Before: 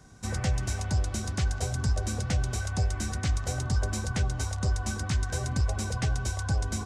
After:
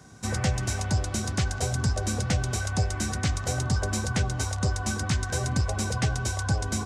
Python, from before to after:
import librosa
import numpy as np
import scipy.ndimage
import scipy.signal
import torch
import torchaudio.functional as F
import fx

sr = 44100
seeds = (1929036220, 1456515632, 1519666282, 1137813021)

y = scipy.signal.sosfilt(scipy.signal.butter(2, 86.0, 'highpass', fs=sr, output='sos'), x)
y = F.gain(torch.from_numpy(y), 4.5).numpy()